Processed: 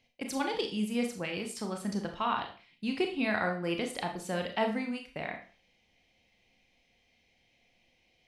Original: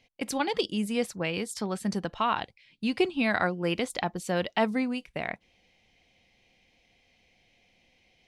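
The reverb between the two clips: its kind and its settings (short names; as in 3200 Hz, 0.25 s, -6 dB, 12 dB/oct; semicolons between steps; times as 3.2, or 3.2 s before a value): Schroeder reverb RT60 0.4 s, combs from 26 ms, DRR 3.5 dB; gain -5.5 dB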